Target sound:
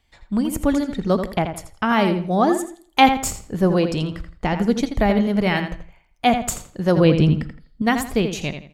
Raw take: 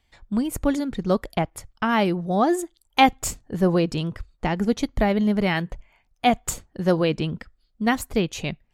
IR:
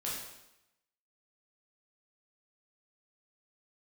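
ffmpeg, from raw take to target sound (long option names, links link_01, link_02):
-filter_complex "[0:a]asettb=1/sr,asplit=3[link_01][link_02][link_03];[link_01]atrim=end=6.974[link_04];[link_02]atrim=start=6.97:end=7.82,asetpts=PTS-STARTPTS,afade=type=in:duration=0.004:curve=qsin,afade=type=out:start_time=0.846:duration=0.004:curve=qsin,lowshelf=frequency=350:gain=9.5[link_05];[link_03]atrim=start=7.816[link_06];[link_04][link_05]acrossfade=duration=0.004:curve1=hsin:curve2=qsin[link_07];[link_07][link_06]acrossfade=duration=0.004:curve1=qsin:curve2=hsin,asplit=2[link_08][link_09];[link_09]adelay=83,lowpass=frequency=4700:poles=1,volume=-8dB,asplit=2[link_10][link_11];[link_11]adelay=83,lowpass=frequency=4700:poles=1,volume=0.29,asplit=2[link_12][link_13];[link_13]adelay=83,lowpass=frequency=4700:poles=1,volume=0.29[link_14];[link_08][link_10][link_12][link_14]amix=inputs=4:normalize=0,asplit=2[link_15][link_16];[1:a]atrim=start_sample=2205,asetrate=70560,aresample=44100[link_17];[link_16][link_17]afir=irnorm=-1:irlink=0,volume=-15dB[link_18];[link_15][link_18]amix=inputs=2:normalize=0,volume=1.5dB"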